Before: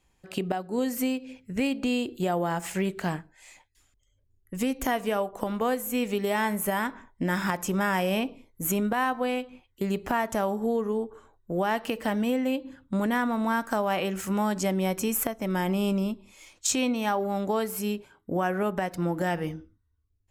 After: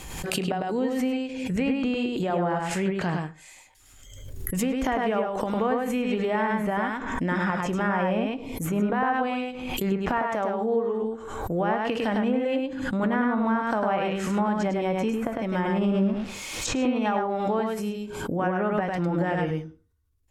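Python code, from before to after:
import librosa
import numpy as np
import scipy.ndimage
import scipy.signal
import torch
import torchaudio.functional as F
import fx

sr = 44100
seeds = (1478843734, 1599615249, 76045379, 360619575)

y = fx.zero_step(x, sr, step_db=-34.0, at=(15.83, 16.75))
y = fx.high_shelf(y, sr, hz=11000.0, db=10.0)
y = y + 10.0 ** (-3.0 / 20.0) * np.pad(y, (int(103 * sr / 1000.0), 0))[:len(y)]
y = fx.env_lowpass_down(y, sr, base_hz=1700.0, full_db=-20.0)
y = fx.highpass(y, sr, hz=280.0, slope=6, at=(10.19, 11.02))
y = fx.peak_eq(y, sr, hz=1800.0, db=fx.line((17.73, -3.5), (18.38, -12.0)), octaves=2.6, at=(17.73, 18.38), fade=0.02)
y = fx.rev_fdn(y, sr, rt60_s=0.41, lf_ratio=0.75, hf_ratio=0.6, size_ms=38.0, drr_db=12.5)
y = fx.pre_swell(y, sr, db_per_s=41.0)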